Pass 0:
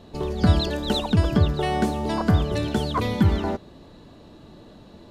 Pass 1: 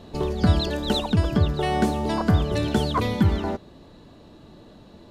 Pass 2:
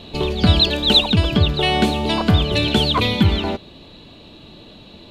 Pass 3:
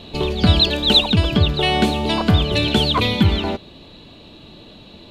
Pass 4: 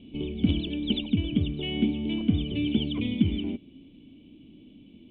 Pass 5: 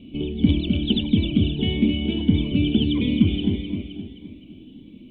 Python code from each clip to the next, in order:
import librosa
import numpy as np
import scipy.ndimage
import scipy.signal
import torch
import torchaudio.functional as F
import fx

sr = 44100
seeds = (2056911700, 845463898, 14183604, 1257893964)

y1 = fx.rider(x, sr, range_db=5, speed_s=0.5)
y2 = fx.band_shelf(y1, sr, hz=3100.0, db=11.5, octaves=1.1)
y2 = y2 * 10.0 ** (4.0 / 20.0)
y3 = y2
y4 = (np.mod(10.0 ** (3.5 / 20.0) * y3 + 1.0, 2.0) - 1.0) / 10.0 ** (3.5 / 20.0)
y4 = fx.formant_cascade(y4, sr, vowel='i')
y5 = fx.echo_feedback(y4, sr, ms=260, feedback_pct=47, wet_db=-5)
y5 = fx.notch_cascade(y5, sr, direction='rising', hz=1.6)
y5 = y5 * 10.0 ** (5.5 / 20.0)